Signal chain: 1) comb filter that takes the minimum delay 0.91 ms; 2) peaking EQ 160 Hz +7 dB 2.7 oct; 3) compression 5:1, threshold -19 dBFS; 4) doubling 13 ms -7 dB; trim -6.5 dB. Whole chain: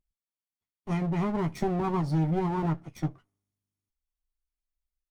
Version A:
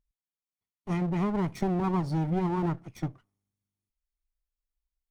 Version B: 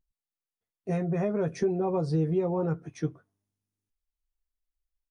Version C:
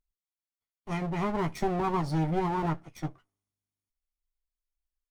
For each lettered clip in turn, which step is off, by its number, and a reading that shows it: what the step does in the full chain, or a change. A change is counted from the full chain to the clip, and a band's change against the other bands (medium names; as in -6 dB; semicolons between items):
4, momentary loudness spread change +1 LU; 1, 500 Hz band +7.5 dB; 2, 125 Hz band -6.0 dB